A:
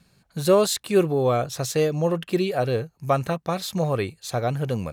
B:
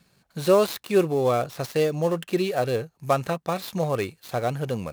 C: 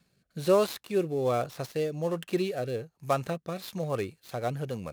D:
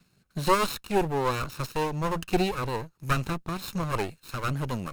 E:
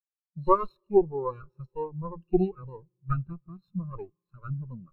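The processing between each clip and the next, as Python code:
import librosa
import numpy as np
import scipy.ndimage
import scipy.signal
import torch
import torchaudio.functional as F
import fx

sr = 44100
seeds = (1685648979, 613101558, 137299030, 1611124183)

y1 = fx.dead_time(x, sr, dead_ms=0.071)
y1 = fx.low_shelf(y1, sr, hz=130.0, db=-8.0)
y2 = fx.rotary_switch(y1, sr, hz=1.2, then_hz=7.0, switch_at_s=3.37)
y2 = y2 * 10.0 ** (-4.0 / 20.0)
y3 = fx.lower_of_two(y2, sr, delay_ms=0.75)
y3 = y3 * 10.0 ** (5.5 / 20.0)
y4 = fx.rev_fdn(y3, sr, rt60_s=3.6, lf_ratio=1.0, hf_ratio=0.8, size_ms=17.0, drr_db=16.0)
y4 = fx.spectral_expand(y4, sr, expansion=2.5)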